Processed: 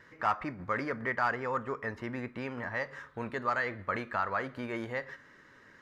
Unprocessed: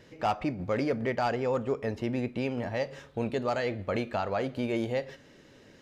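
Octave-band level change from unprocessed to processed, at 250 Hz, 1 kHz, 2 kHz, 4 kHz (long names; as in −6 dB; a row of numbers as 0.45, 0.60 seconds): −7.5, +0.5, +4.5, −7.5 decibels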